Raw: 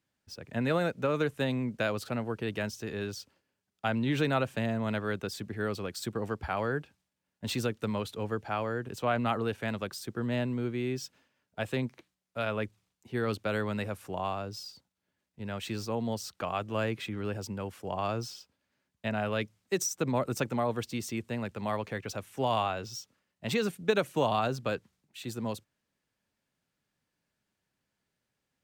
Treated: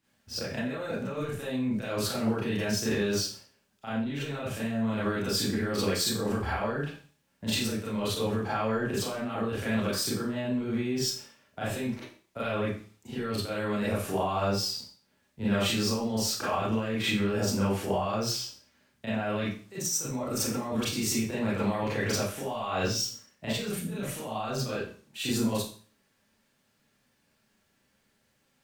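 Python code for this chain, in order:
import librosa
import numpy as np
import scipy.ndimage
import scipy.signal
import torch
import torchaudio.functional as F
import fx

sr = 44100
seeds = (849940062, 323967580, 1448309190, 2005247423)

y = fx.over_compress(x, sr, threshold_db=-37.0, ratio=-1.0)
y = fx.rev_schroeder(y, sr, rt60_s=0.42, comb_ms=28, drr_db=-9.0)
y = F.gain(torch.from_numpy(y), -2.0).numpy()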